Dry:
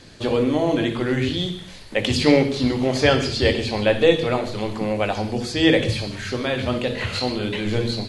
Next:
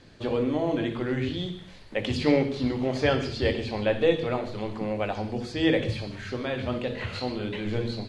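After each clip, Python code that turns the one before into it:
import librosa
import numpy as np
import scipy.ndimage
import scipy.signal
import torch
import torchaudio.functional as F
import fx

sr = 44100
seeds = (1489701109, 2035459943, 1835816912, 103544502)

y = fx.lowpass(x, sr, hz=2800.0, slope=6)
y = F.gain(torch.from_numpy(y), -6.0).numpy()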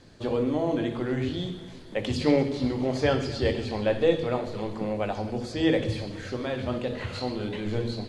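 y = fx.curve_eq(x, sr, hz=(1000.0, 2500.0, 7500.0), db=(0, -4, 3))
y = fx.echo_feedback(y, sr, ms=252, feedback_pct=60, wet_db=-17.5)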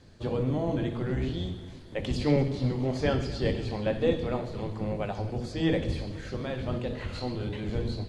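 y = fx.octave_divider(x, sr, octaves=1, level_db=2.0)
y = fx.end_taper(y, sr, db_per_s=230.0)
y = F.gain(torch.from_numpy(y), -4.0).numpy()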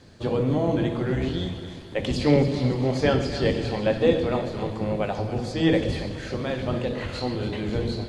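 y = fx.low_shelf(x, sr, hz=80.0, db=-9.0)
y = fx.echo_split(y, sr, split_hz=510.0, low_ms=117, high_ms=286, feedback_pct=52, wet_db=-12.0)
y = F.gain(torch.from_numpy(y), 6.0).numpy()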